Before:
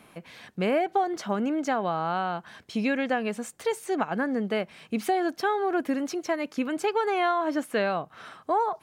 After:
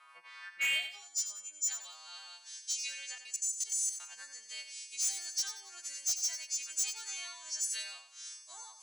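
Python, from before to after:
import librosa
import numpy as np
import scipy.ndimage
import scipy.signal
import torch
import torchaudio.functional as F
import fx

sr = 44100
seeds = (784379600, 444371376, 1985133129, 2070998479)

y = fx.freq_snap(x, sr, grid_st=2)
y = fx.weighting(y, sr, curve='ITU-R 468')
y = fx.robotise(y, sr, hz=102.0, at=(0.8, 1.71))
y = fx.filter_sweep_bandpass(y, sr, from_hz=1200.0, to_hz=6700.0, start_s=0.4, end_s=1.05, q=5.3)
y = fx.level_steps(y, sr, step_db=17, at=(3.15, 4.04))
y = np.clip(y, -10.0 ** (-29.5 / 20.0), 10.0 ** (-29.5 / 20.0))
y = fx.echo_feedback(y, sr, ms=92, feedback_pct=31, wet_db=-10.0)
y = y * librosa.db_to_amplitude(1.5)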